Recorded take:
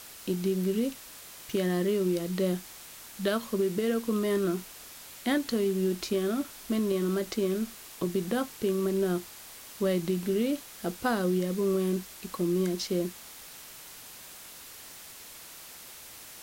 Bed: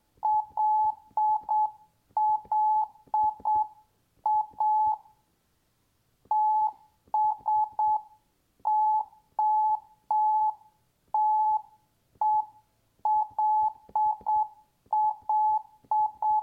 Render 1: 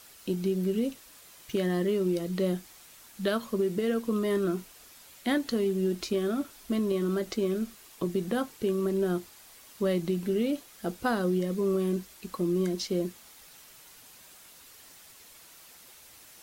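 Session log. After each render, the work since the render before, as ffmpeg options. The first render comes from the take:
-af "afftdn=nr=7:nf=-47"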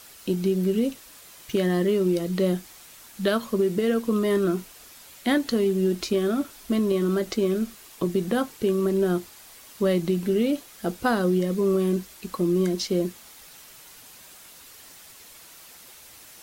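-af "volume=5dB"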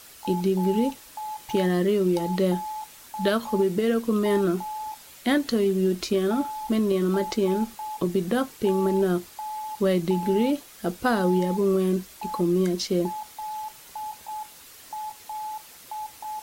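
-filter_complex "[1:a]volume=-9.5dB[a];[0:a][a]amix=inputs=2:normalize=0"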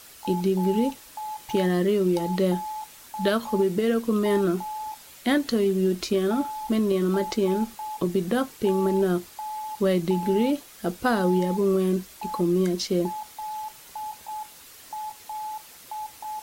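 -af anull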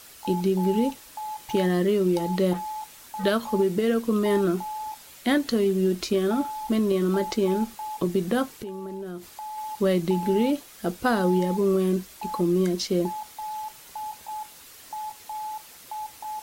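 -filter_complex "[0:a]asettb=1/sr,asplit=3[a][b][c];[a]atrim=end=2.534[d];[b]atrim=start=2.53:end=3.24,asetpts=PTS-STARTPTS,afade=t=in:d=0.004:c=qsin,afade=t=out:st=0.706:d=0.004:c=qsin,volume=28dB,asoftclip=hard,volume=-28dB[e];[c]atrim=start=3.236[f];[d][e]acrossfade=d=0.004:c1=hsin:c2=qsin[g];[g][f]acrossfade=d=0.004:c1=qsin:c2=hsin,asettb=1/sr,asplit=3[h][i][j];[h]atrim=end=8.554[k];[i]atrim=start=8.55:end=9.58,asetpts=PTS-STARTPTS,afade=t=in:d=0.004:c=qsin,afade=t=out:st=1.026:d=0.004:c=qsin,acompressor=threshold=-33dB:ratio=5:attack=3.2:release=140:knee=1:detection=peak[l];[j]atrim=start=9.576[m];[k][l]acrossfade=d=0.004:c1=hsin:c2=qsin[n];[n][m]acrossfade=d=0.004:c1=qsin:c2=hsin"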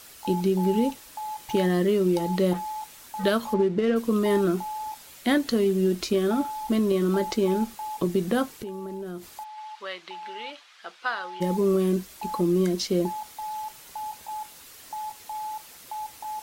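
-filter_complex "[0:a]asplit=3[a][b][c];[a]afade=t=out:st=3.53:d=0.02[d];[b]adynamicsmooth=sensitivity=4:basefreq=2.1k,afade=t=in:st=3.53:d=0.02,afade=t=out:st=3.95:d=0.02[e];[c]afade=t=in:st=3.95:d=0.02[f];[d][e][f]amix=inputs=3:normalize=0,asplit=3[g][h][i];[g]afade=t=out:st=9.43:d=0.02[j];[h]asuperpass=centerf=2100:order=4:qfactor=0.65,afade=t=in:st=9.43:d=0.02,afade=t=out:st=11.4:d=0.02[k];[i]afade=t=in:st=11.4:d=0.02[l];[j][k][l]amix=inputs=3:normalize=0"

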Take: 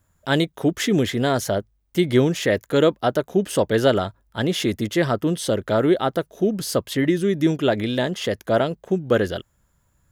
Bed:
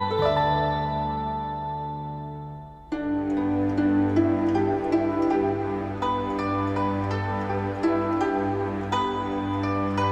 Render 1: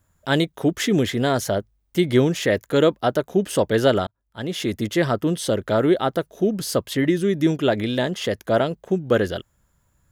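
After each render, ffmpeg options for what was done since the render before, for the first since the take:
-filter_complex "[0:a]asplit=2[a][b];[a]atrim=end=4.07,asetpts=PTS-STARTPTS,afade=t=out:st=4.066:d=0.004:c=hsin[c];[b]atrim=start=4.07,asetpts=PTS-STARTPTS,afade=t=in:d=0.78[d];[c][d]concat=n=2:v=0:a=1"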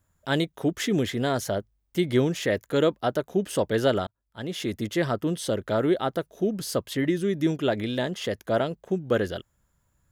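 -af "volume=-5dB"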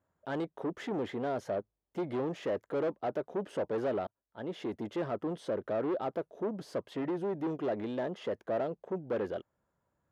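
-af "asoftclip=type=tanh:threshold=-27dB,bandpass=f=550:t=q:w=0.8:csg=0"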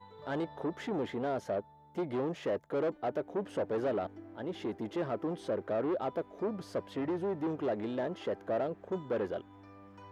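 -filter_complex "[1:a]volume=-28.5dB[a];[0:a][a]amix=inputs=2:normalize=0"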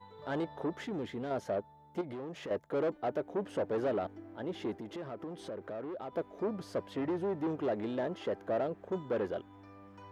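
-filter_complex "[0:a]asettb=1/sr,asplit=3[a][b][c];[a]atrim=end=0.844[d];[b]atrim=start=0.84:end=1.31,asetpts=PTS-STARTPTS,afade=t=in:d=0.004:c=qsin,afade=t=out:st=0.466:d=0.004:c=qsin,equalizer=f=810:w=0.6:g=-8[e];[c]atrim=start=1.306[f];[d][e]acrossfade=d=0.004:c1=hsin:c2=qsin[g];[g][f]acrossfade=d=0.004:c1=qsin:c2=hsin,asettb=1/sr,asplit=3[h][i][j];[h]atrim=end=2.014[k];[i]atrim=start=2.01:end=2.51,asetpts=PTS-STARTPTS,afade=t=in:d=0.004:c=qsin,afade=t=out:st=0.496:d=0.004:c=qsin,acompressor=threshold=-39dB:ratio=4:attack=3.2:release=140:knee=1:detection=peak[l];[j]atrim=start=2.506[m];[k][l]acrossfade=d=0.004:c1=hsin:c2=qsin[n];[n][m]acrossfade=d=0.004:c1=qsin:c2=hsin,asettb=1/sr,asplit=3[o][p][q];[o]atrim=end=4.794[r];[p]atrim=start=4.79:end=6.13,asetpts=PTS-STARTPTS,afade=t=in:d=0.004:c=qsin,afade=t=out:st=1.336:d=0.004:c=qsin,acompressor=threshold=-40dB:ratio=3:attack=3.2:release=140:knee=1:detection=peak[s];[q]atrim=start=6.126[t];[r][s]acrossfade=d=0.004:c1=hsin:c2=qsin[u];[u][t]acrossfade=d=0.004:c1=qsin:c2=hsin"

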